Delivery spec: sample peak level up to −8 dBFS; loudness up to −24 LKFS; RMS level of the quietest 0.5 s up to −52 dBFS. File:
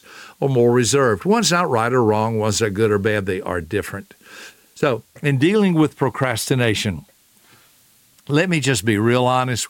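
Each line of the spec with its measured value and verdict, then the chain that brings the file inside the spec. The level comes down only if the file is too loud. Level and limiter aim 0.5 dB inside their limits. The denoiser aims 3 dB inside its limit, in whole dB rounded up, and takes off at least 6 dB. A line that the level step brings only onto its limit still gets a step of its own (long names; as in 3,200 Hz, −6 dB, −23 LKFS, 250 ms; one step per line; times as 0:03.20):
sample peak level −3.5 dBFS: out of spec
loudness −18.5 LKFS: out of spec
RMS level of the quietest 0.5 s −55 dBFS: in spec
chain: level −6 dB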